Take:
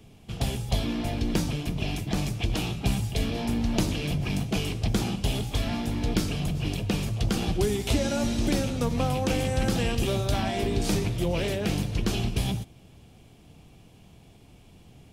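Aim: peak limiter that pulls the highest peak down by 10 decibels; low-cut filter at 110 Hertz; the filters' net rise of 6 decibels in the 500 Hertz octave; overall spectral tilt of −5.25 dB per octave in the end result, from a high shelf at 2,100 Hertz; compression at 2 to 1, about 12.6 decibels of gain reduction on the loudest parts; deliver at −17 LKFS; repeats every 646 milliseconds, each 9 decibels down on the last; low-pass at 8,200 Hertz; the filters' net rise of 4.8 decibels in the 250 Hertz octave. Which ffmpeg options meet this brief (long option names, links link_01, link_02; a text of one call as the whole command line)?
ffmpeg -i in.wav -af "highpass=110,lowpass=8200,equalizer=frequency=250:width_type=o:gain=5,equalizer=frequency=500:width_type=o:gain=5.5,highshelf=frequency=2100:gain=5.5,acompressor=threshold=-41dB:ratio=2,alimiter=level_in=3.5dB:limit=-24dB:level=0:latency=1,volume=-3.5dB,aecho=1:1:646|1292|1938|2584:0.355|0.124|0.0435|0.0152,volume=20dB" out.wav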